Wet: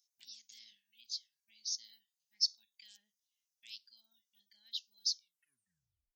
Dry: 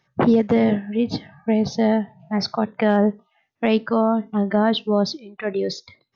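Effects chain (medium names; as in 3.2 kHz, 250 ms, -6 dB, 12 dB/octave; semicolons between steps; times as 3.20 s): tape stop on the ending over 0.97 s; inverse Chebyshev high-pass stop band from 1.3 kHz, stop band 70 dB; trim +3.5 dB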